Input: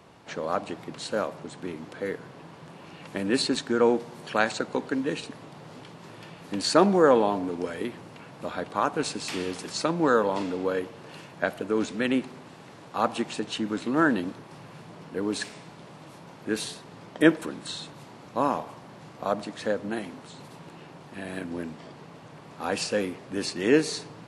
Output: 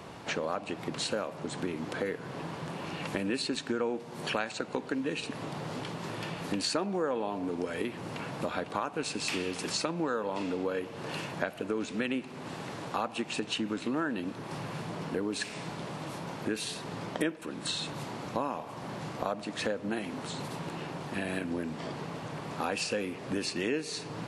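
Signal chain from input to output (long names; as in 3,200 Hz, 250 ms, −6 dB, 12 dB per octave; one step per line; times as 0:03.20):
dynamic equaliser 2,600 Hz, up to +6 dB, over −52 dBFS, Q 4.3
downward compressor 5 to 1, threshold −38 dBFS, peak gain reduction 23 dB
level +7.5 dB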